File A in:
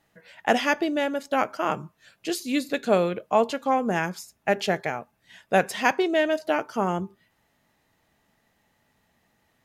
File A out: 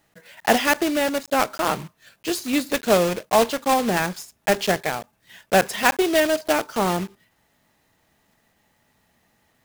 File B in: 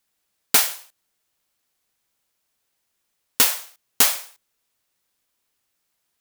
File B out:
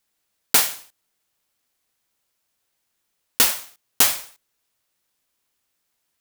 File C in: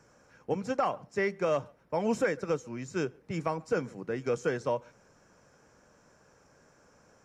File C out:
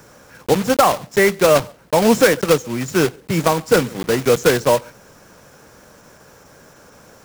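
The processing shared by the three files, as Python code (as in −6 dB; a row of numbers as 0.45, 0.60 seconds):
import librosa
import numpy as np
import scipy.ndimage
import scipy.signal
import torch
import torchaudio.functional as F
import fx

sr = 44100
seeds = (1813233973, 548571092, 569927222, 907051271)

y = fx.block_float(x, sr, bits=3)
y = y * 10.0 ** (-3 / 20.0) / np.max(np.abs(y))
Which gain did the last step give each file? +3.0, −0.5, +15.0 decibels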